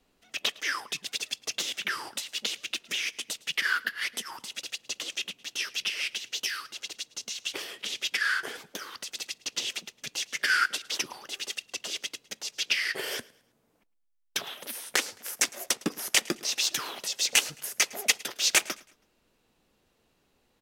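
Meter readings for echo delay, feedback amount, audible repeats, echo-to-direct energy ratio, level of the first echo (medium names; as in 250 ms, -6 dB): 108 ms, 38%, 2, -22.5 dB, -23.0 dB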